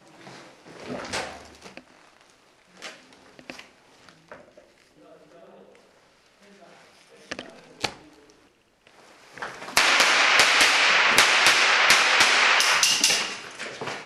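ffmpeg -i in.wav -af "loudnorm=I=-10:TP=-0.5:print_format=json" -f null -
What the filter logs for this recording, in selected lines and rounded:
"input_i" : "-17.4",
"input_tp" : "-3.5",
"input_lra" : "23.0",
"input_thresh" : "-31.4",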